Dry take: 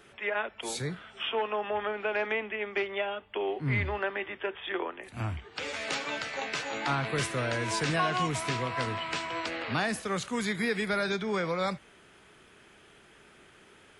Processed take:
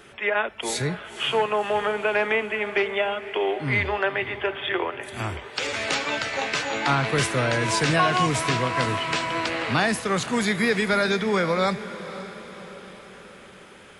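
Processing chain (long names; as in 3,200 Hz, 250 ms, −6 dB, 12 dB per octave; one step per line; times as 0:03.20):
0:03.26–0:05.67: bass and treble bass −7 dB, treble +6 dB
feedback delay with all-pass diffusion 524 ms, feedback 55%, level −14 dB
level +7.5 dB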